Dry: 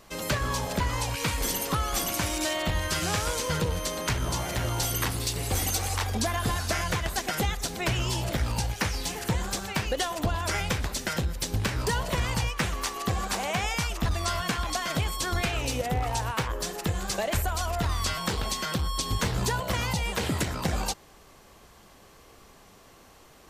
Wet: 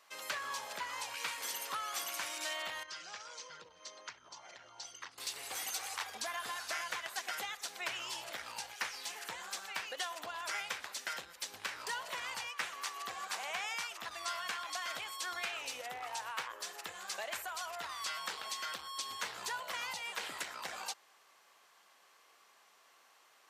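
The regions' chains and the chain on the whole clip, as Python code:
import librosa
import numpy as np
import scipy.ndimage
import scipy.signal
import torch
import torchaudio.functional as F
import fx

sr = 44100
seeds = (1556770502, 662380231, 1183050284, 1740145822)

y = fx.chain(x, sr, fx.envelope_sharpen(power=1.5),
    fx.ladder_lowpass(hz=6900.0, resonance_pct=40), at=(2.83, 5.18))
y = scipy.signal.sosfilt(scipy.signal.butter(2, 1200.0, 'highpass', fs=sr, output='sos'), y)
y = fx.tilt_eq(y, sr, slope=-2.0)
y = y * 10.0 ** (-4.5 / 20.0)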